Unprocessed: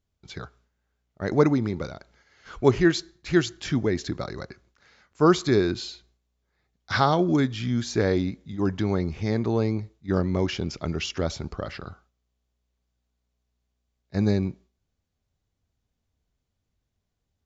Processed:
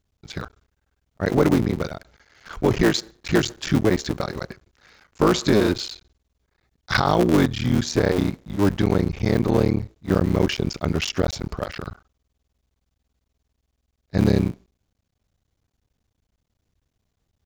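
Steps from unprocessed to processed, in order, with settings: cycle switcher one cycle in 3, muted; peak limiter -14 dBFS, peak gain reduction 8.5 dB; trim +6.5 dB

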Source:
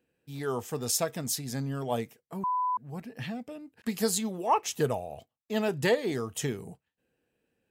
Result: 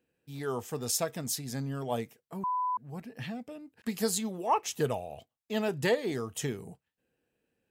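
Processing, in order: 4.85–5.56 s: dynamic bell 3 kHz, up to +6 dB, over -60 dBFS, Q 1.7; trim -2 dB

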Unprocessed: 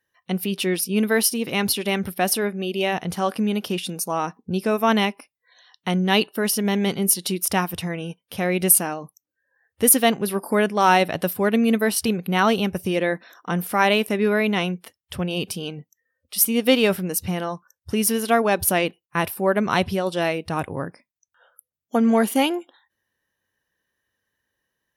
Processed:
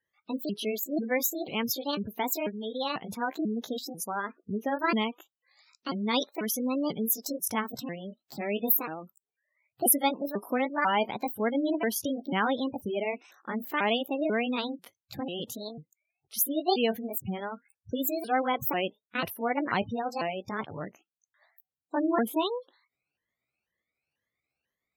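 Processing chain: sawtooth pitch modulation +7.5 st, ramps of 493 ms; spectral gate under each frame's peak -20 dB strong; trim -7 dB

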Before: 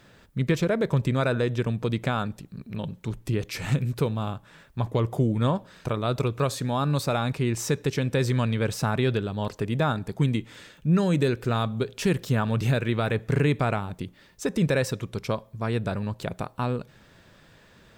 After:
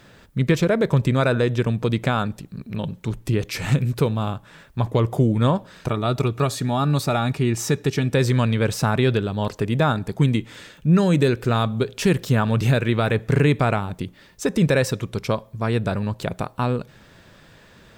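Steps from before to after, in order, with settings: 5.88–8.13 s: comb of notches 520 Hz; trim +5 dB

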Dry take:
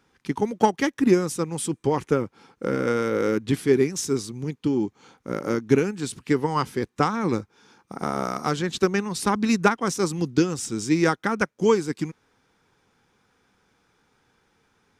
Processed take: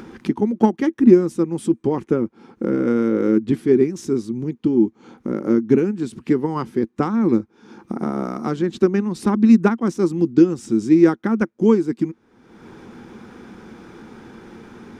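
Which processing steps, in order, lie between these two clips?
treble shelf 2.8 kHz -10 dB; upward compressor, threshold -24 dBFS; small resonant body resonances 230/330 Hz, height 13 dB, ringing for 60 ms; trim -2 dB

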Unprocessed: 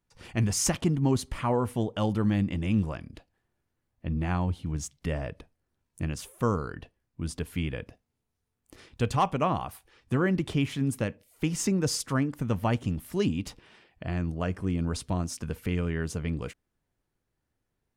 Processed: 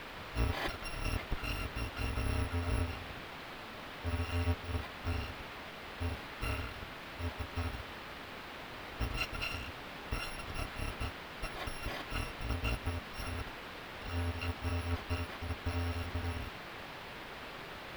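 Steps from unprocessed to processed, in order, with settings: bit-reversed sample order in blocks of 256 samples; word length cut 6-bit, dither triangular; distance through air 410 m; trim +1 dB

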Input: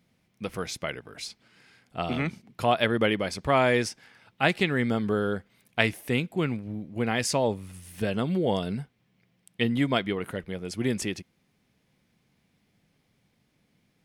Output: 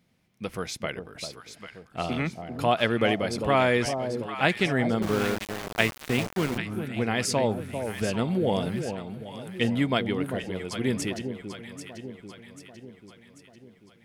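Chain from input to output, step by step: echo whose repeats swap between lows and highs 395 ms, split 860 Hz, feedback 71%, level -7 dB; 5.02–6.58 s: small samples zeroed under -28 dBFS

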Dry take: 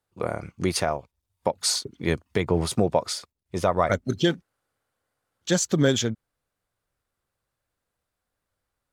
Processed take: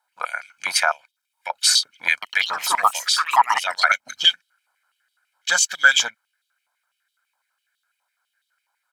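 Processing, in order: comb 1.3 ms, depth 87%; 2.12–4.28 s: ever faster or slower copies 104 ms, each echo +5 st, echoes 3, each echo -6 dB; step-sequenced high-pass 12 Hz 990–3400 Hz; trim +3.5 dB

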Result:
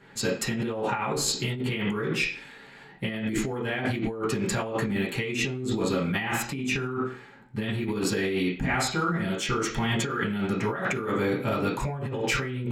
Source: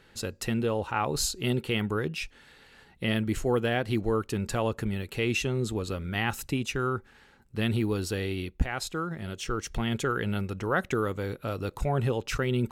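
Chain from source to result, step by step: reverberation RT60 0.45 s, pre-delay 3 ms, DRR -7.5 dB; compressor with a negative ratio -26 dBFS, ratio -1; tape noise reduction on one side only decoder only; trim -2 dB

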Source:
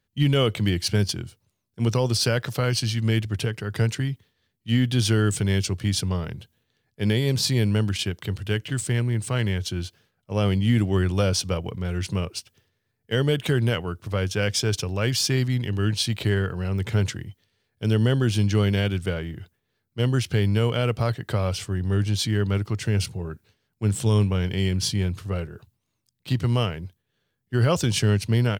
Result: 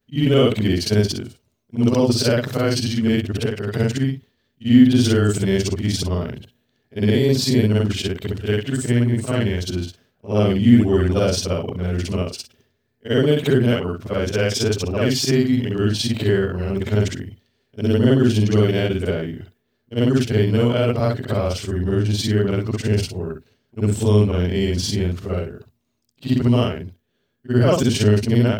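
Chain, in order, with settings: short-time spectra conjugated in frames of 134 ms; graphic EQ with 31 bands 250 Hz +11 dB, 400 Hz +7 dB, 630 Hz +7 dB, 10 kHz -6 dB; trim +5 dB

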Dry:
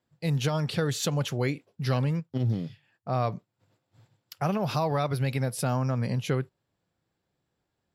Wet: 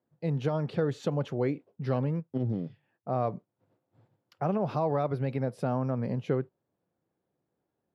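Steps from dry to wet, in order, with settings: band-pass filter 390 Hz, Q 0.66; trim +1.5 dB

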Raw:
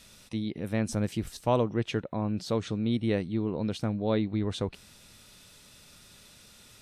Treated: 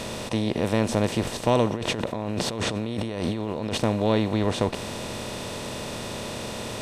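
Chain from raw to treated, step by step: spectral levelling over time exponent 0.4; 1.74–3.78 s: compressor with a negative ratio -30 dBFS, ratio -1; trim +1.5 dB

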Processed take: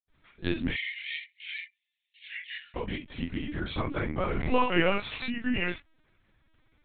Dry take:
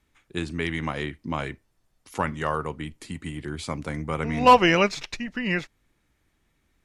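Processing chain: 0.60–2.68 s: steep high-pass 1.9 kHz 72 dB/octave; compression 2:1, threshold -28 dBFS, peak gain reduction 10 dB; reverberation, pre-delay 77 ms; LPC vocoder at 8 kHz pitch kept; trim +4 dB

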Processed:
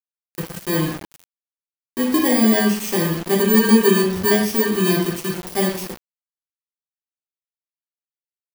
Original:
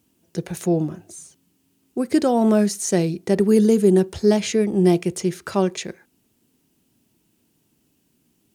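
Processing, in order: bit-reversed sample order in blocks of 32 samples; reverberation RT60 0.60 s, pre-delay 3 ms, DRR -3 dB; reverse; upward compressor, threshold -29 dBFS; reverse; small samples zeroed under -23 dBFS; trim -4.5 dB

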